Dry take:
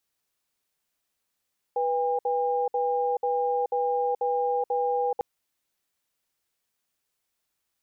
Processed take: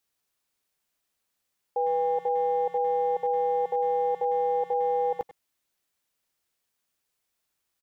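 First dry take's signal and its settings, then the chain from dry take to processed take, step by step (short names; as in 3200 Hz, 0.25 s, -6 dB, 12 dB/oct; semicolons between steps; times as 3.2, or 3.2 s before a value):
cadence 491 Hz, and 807 Hz, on 0.43 s, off 0.06 s, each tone -25.5 dBFS 3.45 s
speakerphone echo 0.1 s, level -14 dB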